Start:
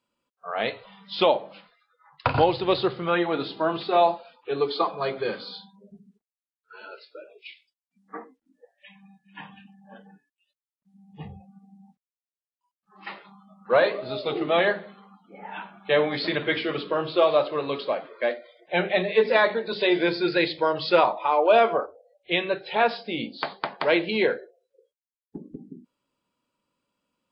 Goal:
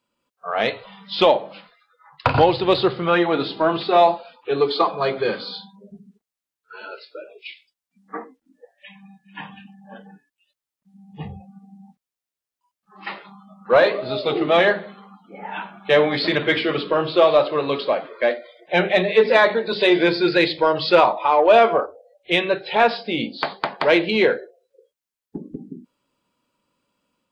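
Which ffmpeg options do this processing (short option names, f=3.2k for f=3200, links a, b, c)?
-filter_complex "[0:a]dynaudnorm=f=160:g=3:m=3.5dB,asplit=2[a][b];[b]asoftclip=type=tanh:threshold=-15dB,volume=-8dB[c];[a][c]amix=inputs=2:normalize=0"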